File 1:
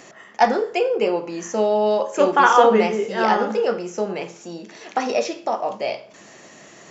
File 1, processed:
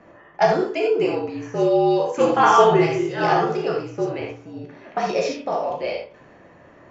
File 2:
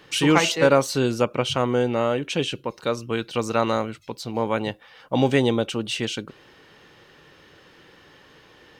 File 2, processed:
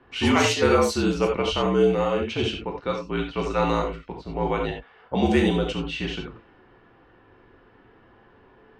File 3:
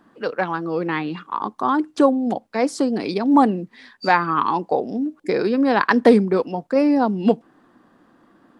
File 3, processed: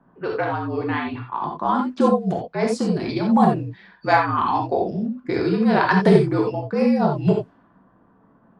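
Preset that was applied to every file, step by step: frequency shift -55 Hz; non-linear reverb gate 0.11 s flat, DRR 0 dB; low-pass opened by the level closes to 1300 Hz, open at -12 dBFS; gain -3.5 dB

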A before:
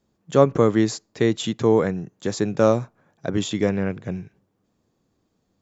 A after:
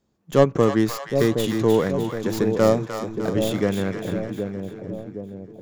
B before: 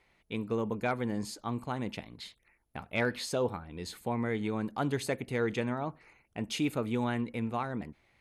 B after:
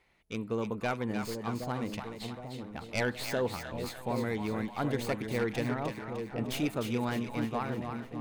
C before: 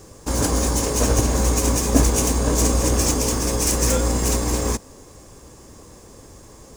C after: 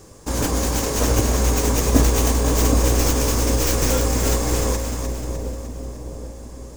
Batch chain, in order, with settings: tracing distortion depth 0.11 ms; split-band echo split 720 Hz, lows 0.768 s, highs 0.303 s, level -6 dB; gain -1 dB

